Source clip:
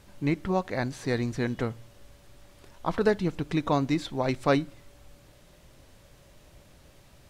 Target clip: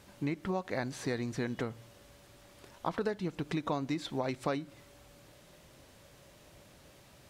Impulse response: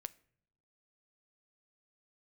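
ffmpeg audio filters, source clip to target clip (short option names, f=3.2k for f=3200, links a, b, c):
-af "acompressor=threshold=-29dB:ratio=6,highpass=f=130:p=1"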